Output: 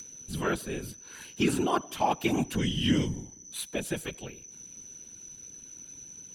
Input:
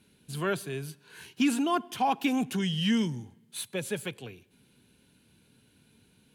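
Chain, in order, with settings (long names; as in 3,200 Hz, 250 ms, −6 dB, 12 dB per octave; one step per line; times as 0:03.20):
steady tone 6,000 Hz −48 dBFS
upward compression, threshold −42 dBFS
random phases in short frames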